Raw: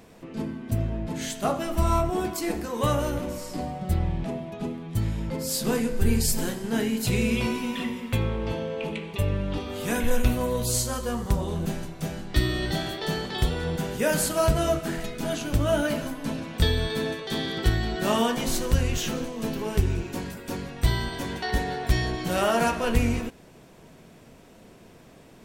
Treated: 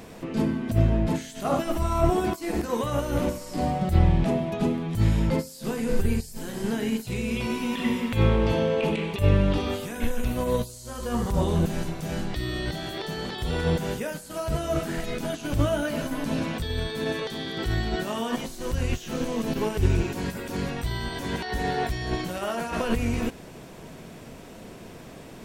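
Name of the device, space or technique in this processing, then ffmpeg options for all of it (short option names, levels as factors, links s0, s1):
de-esser from a sidechain: -filter_complex "[0:a]asplit=2[s0][s1];[s1]highpass=f=4200:w=0.5412,highpass=f=4200:w=1.3066,apad=whole_len=1122343[s2];[s0][s2]sidechaincompress=threshold=0.00398:ratio=20:attack=0.89:release=44,volume=2.37"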